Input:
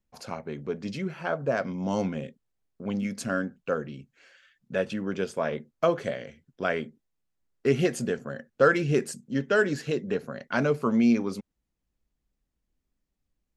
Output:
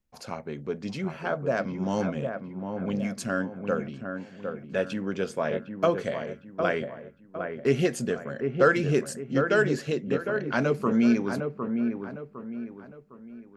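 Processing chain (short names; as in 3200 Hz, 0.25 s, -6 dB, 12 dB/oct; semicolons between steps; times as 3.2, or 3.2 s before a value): dark delay 0.757 s, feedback 37%, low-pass 1700 Hz, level -6 dB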